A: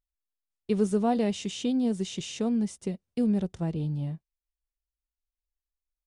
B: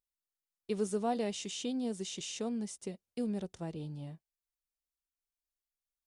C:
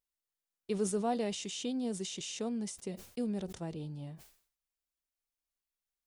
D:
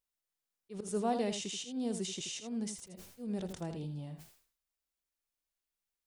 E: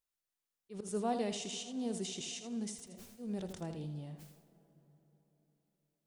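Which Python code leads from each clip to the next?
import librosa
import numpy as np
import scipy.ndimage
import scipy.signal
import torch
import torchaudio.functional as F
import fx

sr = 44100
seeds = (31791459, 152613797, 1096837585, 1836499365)

y1 = fx.bass_treble(x, sr, bass_db=-8, treble_db=5)
y1 = y1 * librosa.db_to_amplitude(-5.5)
y2 = fx.sustainer(y1, sr, db_per_s=110.0)
y3 = fx.auto_swell(y2, sr, attack_ms=168.0)
y3 = y3 + 10.0 ** (-9.0 / 20.0) * np.pad(y3, (int(81 * sr / 1000.0), 0))[:len(y3)]
y4 = fx.rev_plate(y3, sr, seeds[0], rt60_s=4.2, hf_ratio=0.6, predelay_ms=0, drr_db=15.5)
y4 = y4 * librosa.db_to_amplitude(-2.0)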